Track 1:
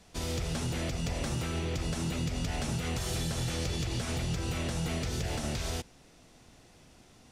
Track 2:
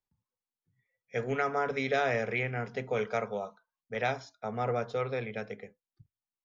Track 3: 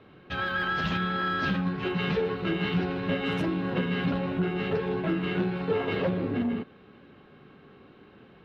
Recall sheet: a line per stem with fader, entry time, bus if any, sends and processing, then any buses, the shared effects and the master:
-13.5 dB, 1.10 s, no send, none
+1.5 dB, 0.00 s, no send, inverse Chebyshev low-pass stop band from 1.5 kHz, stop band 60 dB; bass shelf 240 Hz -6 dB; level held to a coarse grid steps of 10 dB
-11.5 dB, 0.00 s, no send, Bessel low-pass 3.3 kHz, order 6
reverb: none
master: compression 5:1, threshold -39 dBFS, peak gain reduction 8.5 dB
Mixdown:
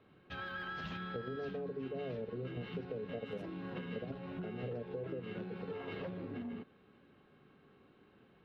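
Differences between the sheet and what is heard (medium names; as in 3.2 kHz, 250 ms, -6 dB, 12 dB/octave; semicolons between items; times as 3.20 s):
stem 1: muted; stem 2 +1.5 dB -> +9.5 dB; stem 3: missing Bessel low-pass 3.3 kHz, order 6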